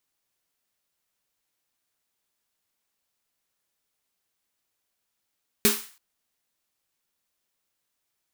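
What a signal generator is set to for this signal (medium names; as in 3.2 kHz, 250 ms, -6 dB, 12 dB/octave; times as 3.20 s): snare drum length 0.33 s, tones 220 Hz, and 410 Hz, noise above 950 Hz, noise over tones 2 dB, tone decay 0.24 s, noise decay 0.43 s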